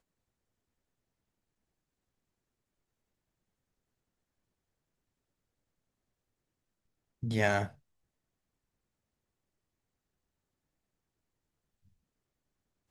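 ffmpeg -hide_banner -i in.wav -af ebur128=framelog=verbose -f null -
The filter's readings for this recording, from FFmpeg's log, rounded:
Integrated loudness:
  I:         -32.1 LUFS
  Threshold: -42.7 LUFS
Loudness range:
  LRA:         6.6 LU
  Threshold: -58.4 LUFS
  LRA low:   -44.5 LUFS
  LRA high:  -37.9 LUFS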